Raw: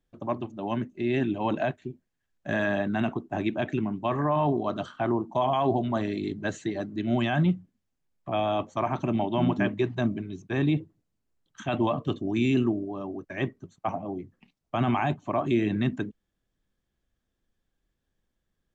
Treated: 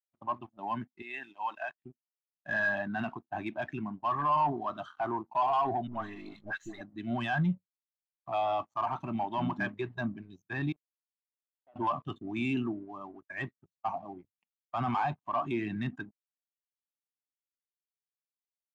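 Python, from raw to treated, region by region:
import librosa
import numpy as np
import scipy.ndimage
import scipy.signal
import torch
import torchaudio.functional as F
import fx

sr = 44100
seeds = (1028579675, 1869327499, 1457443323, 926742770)

y = fx.chain(x, sr, fx.highpass(hz=1200.0, slope=6),
    fx.high_shelf(hz=4800.0, db=-4.0), at=(1.02, 1.85))
y = fx.chain(y, sr, fx.halfwave_gain(db=-7.0),
    fx.dispersion(late='highs', ms=90.0, hz=940.0), at=(5.87, 6.81))
y = fx.chain(y, sr, fx.bandpass_q(hz=510.0, q=4.8),
    fx.level_steps(step_db=22), at=(10.72, 11.76))
y = fx.low_shelf_res(y, sr, hz=680.0, db=-9.0, q=1.5)
y = fx.leveller(y, sr, passes=3)
y = fx.spectral_expand(y, sr, expansion=1.5)
y = y * 10.0 ** (-5.5 / 20.0)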